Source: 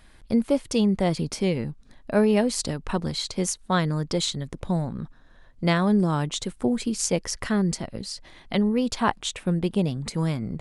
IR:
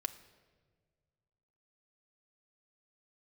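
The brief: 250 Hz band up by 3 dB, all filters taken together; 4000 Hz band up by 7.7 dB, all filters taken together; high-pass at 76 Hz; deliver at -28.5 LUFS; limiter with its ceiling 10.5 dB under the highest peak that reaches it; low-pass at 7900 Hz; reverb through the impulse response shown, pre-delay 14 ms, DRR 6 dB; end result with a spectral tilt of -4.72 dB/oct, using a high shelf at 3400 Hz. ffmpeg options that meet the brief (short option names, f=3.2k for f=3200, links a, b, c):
-filter_complex "[0:a]highpass=76,lowpass=7.9k,equalizer=f=250:t=o:g=4,highshelf=f=3.4k:g=3.5,equalizer=f=4k:t=o:g=7,alimiter=limit=-14dB:level=0:latency=1,asplit=2[a][b];[1:a]atrim=start_sample=2205,adelay=14[c];[b][c]afir=irnorm=-1:irlink=0,volume=-6dB[d];[a][d]amix=inputs=2:normalize=0,volume=-5dB"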